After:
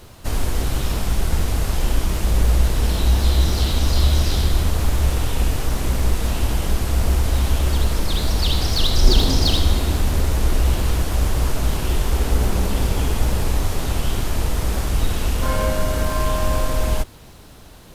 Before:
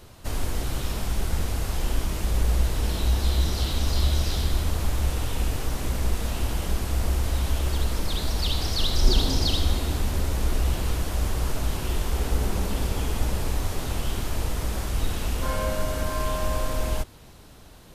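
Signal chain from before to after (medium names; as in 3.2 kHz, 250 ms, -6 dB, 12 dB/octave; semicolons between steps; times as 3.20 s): in parallel at -12 dB: Schmitt trigger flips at -24.5 dBFS; on the sum: bit crusher 11-bit; trim +5 dB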